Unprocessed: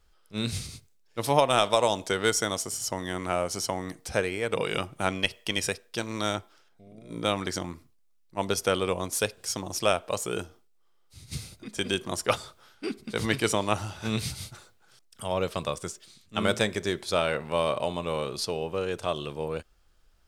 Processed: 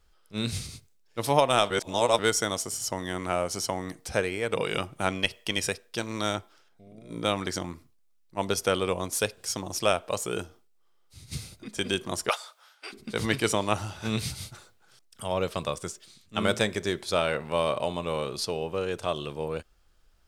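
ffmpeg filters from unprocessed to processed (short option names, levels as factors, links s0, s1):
-filter_complex "[0:a]asettb=1/sr,asplit=3[s0][s1][s2];[s0]atrim=end=12.294[s3];[s1]atrim=start=12.29:end=12.93,asetpts=PTS-STARTPTS,afade=t=in:d=0.004:c=qsin,afade=t=out:st=0.636:d=0.004:c=qsin,highpass=f=630:w=0.5412,highpass=f=630:w=1.3066[s4];[s2]atrim=start=12.926[s5];[s3][s4]acrossfade=d=0.004:c1=hsin:c2=qsin[s6];[s6][s5]acrossfade=d=0.004:c1=qsin:c2=hsin,asplit=3[s7][s8][s9];[s7]atrim=end=1.702[s10];[s8]atrim=start=1.698:end=2.192,asetpts=PTS-STARTPTS,areverse[s11];[s9]atrim=start=2.188[s12];[s10][s11]acrossfade=d=0.004:c1=hsin:c2=hsin[s13];[s13][s12]acrossfade=d=0.004:c1=hsin:c2=hsin"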